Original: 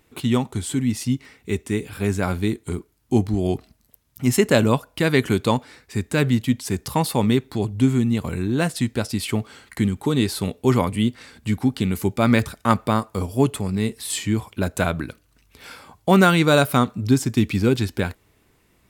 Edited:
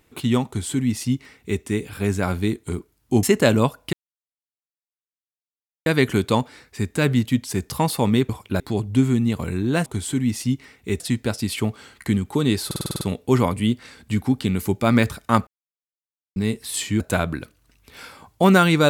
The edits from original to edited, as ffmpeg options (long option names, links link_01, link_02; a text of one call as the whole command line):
ffmpeg -i in.wav -filter_complex "[0:a]asplit=17[link_01][link_02][link_03][link_04][link_05][link_06][link_07][link_08][link_09][link_10][link_11][link_12][link_13][link_14][link_15][link_16][link_17];[link_01]atrim=end=3.232[link_18];[link_02]atrim=start=4.318:end=5.02,asetpts=PTS-STARTPTS,afade=type=out:start_time=0.698:duration=0.004:curve=hsin,apad=pad_dur=1.93[link_19];[link_03]atrim=start=5.02:end=7.452,asetpts=PTS-STARTPTS,afade=type=in:duration=0.004:curve=hsin[link_20];[link_04]atrim=start=14.358:end=14.672[link_21];[link_05]atrim=start=7.448:end=8.712[link_22];[link_06]atrim=start=0.468:end=1.612[link_23];[link_07]atrim=start=8.708:end=10.422[link_24];[link_08]atrim=start=10.368:end=10.422[link_25];[link_09]atrim=start=10.368:end=10.422[link_26];[link_10]atrim=start=10.368:end=10.422[link_27];[link_11]atrim=start=10.368:end=10.422[link_28];[link_12]atrim=start=10.368:end=10.422[link_29];[link_13]atrim=start=10.368:end=10.422[link_30];[link_14]atrim=start=10.368:end=12.83,asetpts=PTS-STARTPTS,afade=type=out:start_time=2.458:duration=0.004:curve=hsin[link_31];[link_15]atrim=start=12.83:end=13.72,asetpts=PTS-STARTPTS,volume=0[link_32];[link_16]atrim=start=13.72:end=14.362,asetpts=PTS-STARTPTS,afade=type=in:duration=0.004:curve=hsin[link_33];[link_17]atrim=start=14.668[link_34];[link_19][link_20]concat=n=2:v=0:a=1[link_35];[link_18][link_35]acrossfade=duration=0.004:curve1=hsin:curve2=hsin[link_36];[link_36][link_21]acrossfade=duration=0.004:curve1=hsin:curve2=hsin[link_37];[link_37][link_22]acrossfade=duration=0.004:curve1=hsin:curve2=hsin[link_38];[link_38][link_23]acrossfade=duration=0.004:curve1=hsin:curve2=hsin[link_39];[link_39][link_24]acrossfade=duration=0.004:curve1=hsin:curve2=hsin[link_40];[link_40][link_25]acrossfade=duration=0.004:curve1=hsin:curve2=hsin[link_41];[link_41][link_26]acrossfade=duration=0.004:curve1=hsin:curve2=hsin[link_42];[link_42][link_27]acrossfade=duration=0.004:curve1=hsin:curve2=hsin[link_43];[link_43][link_28]acrossfade=duration=0.004:curve1=hsin:curve2=hsin[link_44];[link_44][link_29]acrossfade=duration=0.004:curve1=hsin:curve2=hsin[link_45];[link_45][link_30]acrossfade=duration=0.004:curve1=hsin:curve2=hsin[link_46];[link_31][link_32][link_33]concat=n=3:v=0:a=1[link_47];[link_46][link_47]acrossfade=duration=0.004:curve1=hsin:curve2=hsin[link_48];[link_48][link_34]acrossfade=duration=0.004:curve1=hsin:curve2=hsin" out.wav